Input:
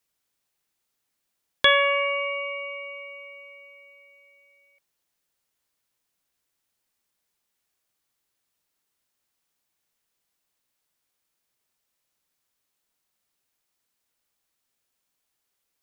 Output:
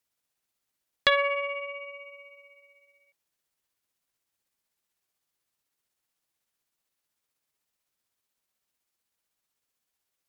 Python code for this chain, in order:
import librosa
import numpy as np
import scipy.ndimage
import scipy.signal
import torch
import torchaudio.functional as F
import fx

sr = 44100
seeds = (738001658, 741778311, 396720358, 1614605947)

y = fx.stretch_grains(x, sr, factor=0.65, grain_ms=126.0)
y = fx.cheby_harmonics(y, sr, harmonics=(2,), levels_db=(-21,), full_scale_db=-5.0)
y = fx.doppler_dist(y, sr, depth_ms=0.27)
y = F.gain(torch.from_numpy(y), -2.5).numpy()